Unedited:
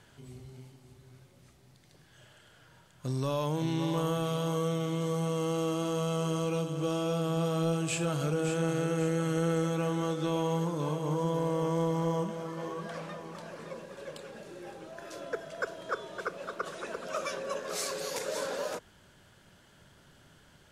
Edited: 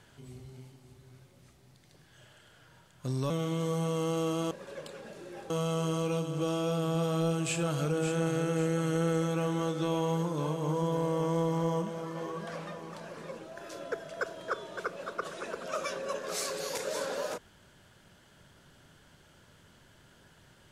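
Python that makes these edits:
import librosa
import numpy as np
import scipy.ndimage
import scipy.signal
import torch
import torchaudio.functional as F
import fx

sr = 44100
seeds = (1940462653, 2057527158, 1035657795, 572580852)

y = fx.edit(x, sr, fx.cut(start_s=3.3, length_s=1.41),
    fx.move(start_s=13.81, length_s=0.99, to_s=5.92), tone=tone)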